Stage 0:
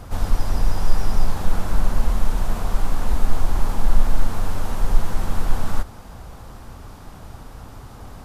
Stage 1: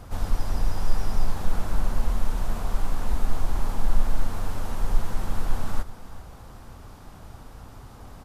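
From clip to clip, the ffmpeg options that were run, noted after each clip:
-af "aecho=1:1:388:0.133,volume=0.562"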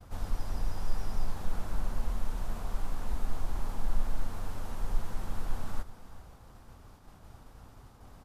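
-af "agate=range=0.0224:threshold=0.00891:ratio=3:detection=peak,volume=0.398"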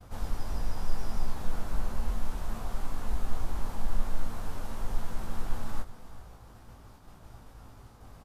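-filter_complex "[0:a]asplit=2[s0][s1];[s1]adelay=18,volume=0.473[s2];[s0][s2]amix=inputs=2:normalize=0,volume=1.12"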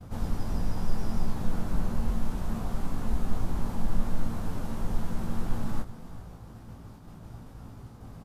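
-af "equalizer=f=170:t=o:w=2.3:g=11"

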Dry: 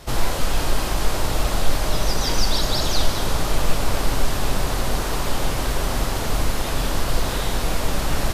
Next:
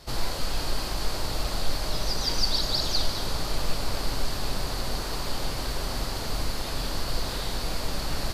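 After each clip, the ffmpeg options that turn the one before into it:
-af "equalizer=f=4500:w=4.1:g=10.5,volume=0.398"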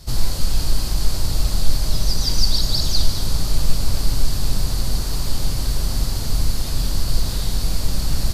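-af "bass=f=250:g=14,treble=f=4000:g=11,volume=0.75"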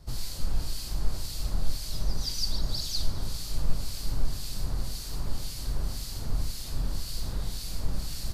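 -filter_complex "[0:a]acrossover=split=1900[s0][s1];[s0]aeval=exprs='val(0)*(1-0.7/2+0.7/2*cos(2*PI*1.9*n/s))':c=same[s2];[s1]aeval=exprs='val(0)*(1-0.7/2-0.7/2*cos(2*PI*1.9*n/s))':c=same[s3];[s2][s3]amix=inputs=2:normalize=0,volume=0.398"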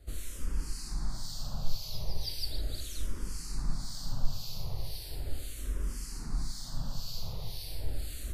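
-filter_complex "[0:a]asplit=2[s0][s1];[s1]afreqshift=-0.37[s2];[s0][s2]amix=inputs=2:normalize=1,volume=0.841"

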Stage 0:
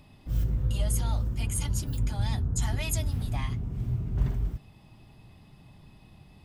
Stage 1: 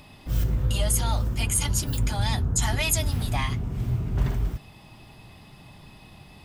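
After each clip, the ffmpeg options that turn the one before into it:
-filter_complex "[0:a]lowshelf=f=400:g=-8,asplit=2[s0][s1];[s1]alimiter=level_in=1.33:limit=0.0631:level=0:latency=1:release=111,volume=0.75,volume=0.75[s2];[s0][s2]amix=inputs=2:normalize=0,volume=2"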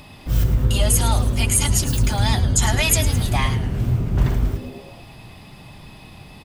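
-filter_complex "[0:a]asplit=6[s0][s1][s2][s3][s4][s5];[s1]adelay=107,afreqshift=-150,volume=0.237[s6];[s2]adelay=214,afreqshift=-300,volume=0.126[s7];[s3]adelay=321,afreqshift=-450,volume=0.0668[s8];[s4]adelay=428,afreqshift=-600,volume=0.0355[s9];[s5]adelay=535,afreqshift=-750,volume=0.0186[s10];[s0][s6][s7][s8][s9][s10]amix=inputs=6:normalize=0,volume=2"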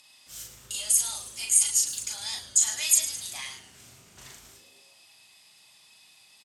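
-filter_complex "[0:a]bandpass=f=7400:t=q:w=1.5:csg=0,asplit=2[s0][s1];[s1]adelay=38,volume=0.668[s2];[s0][s2]amix=inputs=2:normalize=0"

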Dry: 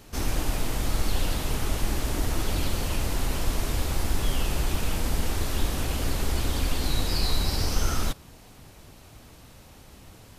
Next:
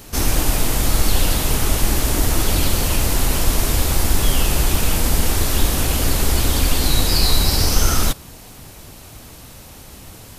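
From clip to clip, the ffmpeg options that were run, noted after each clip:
-af "highshelf=f=6700:g=8.5,volume=2.66"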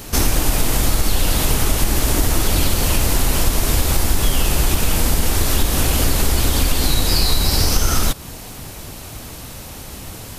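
-af "acompressor=threshold=0.112:ratio=3,volume=2"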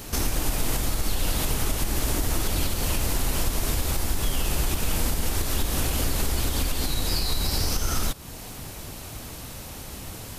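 -af "alimiter=limit=0.335:level=0:latency=1:release=324,volume=0.596"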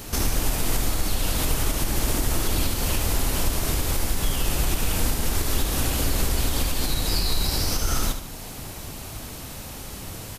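-af "aecho=1:1:74|148|222|296|370:0.376|0.169|0.0761|0.0342|0.0154,volume=1.12"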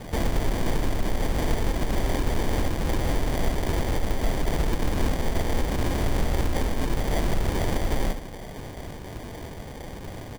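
-af "acrusher=samples=33:mix=1:aa=0.000001,volume=0.891"

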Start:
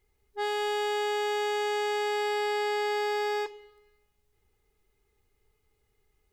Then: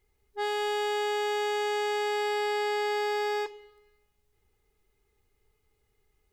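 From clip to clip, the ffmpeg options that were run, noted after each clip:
-af anull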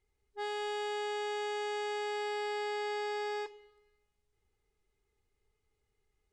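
-af "lowpass=f=10000:w=0.5412,lowpass=f=10000:w=1.3066,volume=0.447"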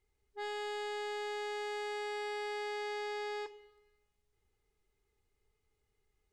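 -af "asoftclip=type=tanh:threshold=0.0188"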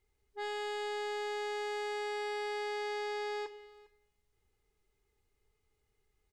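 -af "aecho=1:1:403:0.0708,volume=1.19"

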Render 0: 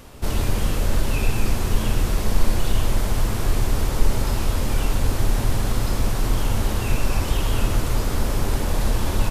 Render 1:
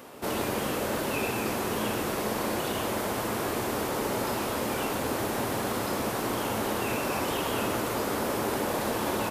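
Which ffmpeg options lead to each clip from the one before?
-af "highpass=280,equalizer=f=5700:w=0.45:g=-7,volume=1.33"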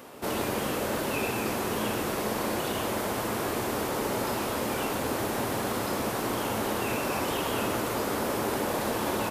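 -af anull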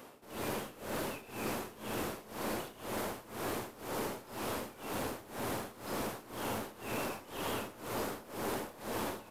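-af "aeval=exprs='(tanh(15.8*val(0)+0.35)-tanh(0.35))/15.8':c=same,tremolo=f=2:d=0.89,volume=0.631"

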